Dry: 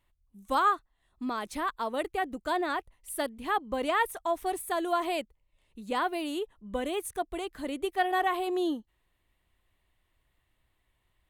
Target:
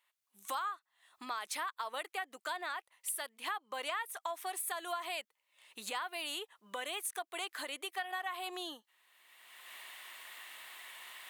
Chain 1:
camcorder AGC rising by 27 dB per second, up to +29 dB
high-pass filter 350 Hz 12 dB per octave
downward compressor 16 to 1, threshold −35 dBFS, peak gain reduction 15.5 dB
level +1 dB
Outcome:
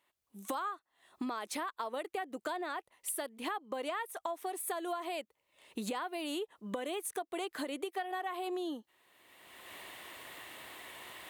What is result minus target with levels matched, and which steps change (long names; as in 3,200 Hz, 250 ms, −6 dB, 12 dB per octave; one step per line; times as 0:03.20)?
250 Hz band +12.5 dB
change: high-pass filter 1,100 Hz 12 dB per octave